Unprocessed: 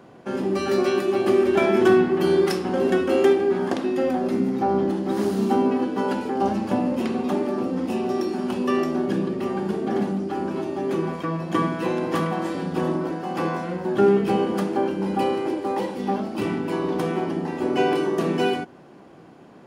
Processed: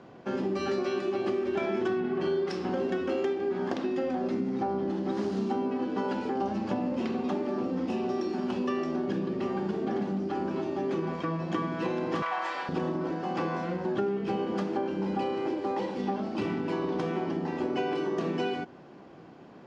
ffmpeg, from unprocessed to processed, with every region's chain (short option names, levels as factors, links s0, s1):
-filter_complex "[0:a]asettb=1/sr,asplit=3[s0][s1][s2];[s0]atrim=end=2.004[s3];[s1]atrim=start=2:end=2.49,asetpts=PTS-STARTPTS,afade=t=in:d=0.004:c=qsin,afade=t=out:st=0.486:d=0.004:c=qsin,highshelf=f=5500:g=-8,asplit=2[s4][s5];[s5]adelay=41,volume=0.708[s6];[s4][s6]amix=inputs=2:normalize=0,atrim=end_sample=21609[s7];[s2]atrim=start=2.486[s8];[s3][s7]acrossfade=d=0.004:c1=hsin:c2=qsin[s9];[s9][s8]acrossfade=d=0.004:c1=qsin:c2=hsin,asettb=1/sr,asplit=3[s10][s11][s12];[s10]atrim=end=12.224[s13];[s11]atrim=start=12.22:end=12.69,asetpts=PTS-STARTPTS,afade=t=in:d=0.004:c=qsin,afade=t=out:st=0.466:d=0.004:c=qsin,highpass=f=880:t=q:w=1.6,equalizer=f=2100:t=o:w=1.3:g=6[s14];[s12]atrim=start=12.686[s15];[s13][s14]acrossfade=d=0.004:c1=hsin:c2=qsin[s16];[s16][s15]acrossfade=d=0.004:c1=qsin:c2=hsin,lowpass=f=6300:w=0.5412,lowpass=f=6300:w=1.3066,acompressor=threshold=0.0631:ratio=6,volume=0.75"